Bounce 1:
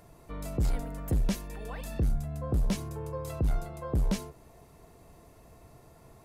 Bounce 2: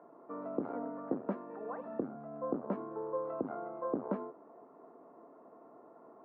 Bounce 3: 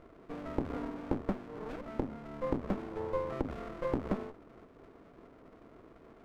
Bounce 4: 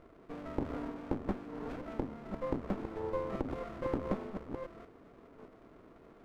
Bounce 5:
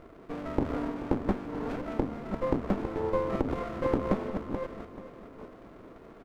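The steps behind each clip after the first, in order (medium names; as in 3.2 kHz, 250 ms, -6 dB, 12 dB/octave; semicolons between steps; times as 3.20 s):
elliptic band-pass 250–1300 Hz, stop band 80 dB; trim +2.5 dB
sliding maximum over 33 samples; trim +3 dB
chunks repeated in reverse 606 ms, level -6.5 dB; trim -2 dB
feedback delay 434 ms, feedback 47%, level -14 dB; trim +7 dB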